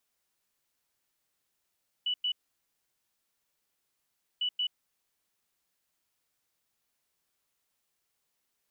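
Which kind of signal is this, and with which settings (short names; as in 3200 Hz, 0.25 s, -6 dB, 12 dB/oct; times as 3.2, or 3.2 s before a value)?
beep pattern sine 2960 Hz, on 0.08 s, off 0.10 s, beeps 2, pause 2.09 s, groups 2, -27 dBFS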